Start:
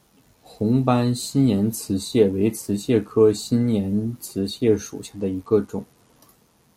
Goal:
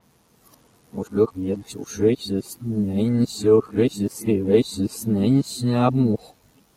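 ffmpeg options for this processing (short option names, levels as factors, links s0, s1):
-af "areverse,adynamicequalizer=threshold=0.00794:dfrequency=4400:dqfactor=0.7:tfrequency=4400:tqfactor=0.7:attack=5:release=100:ratio=0.375:range=2:mode=cutabove:tftype=highshelf"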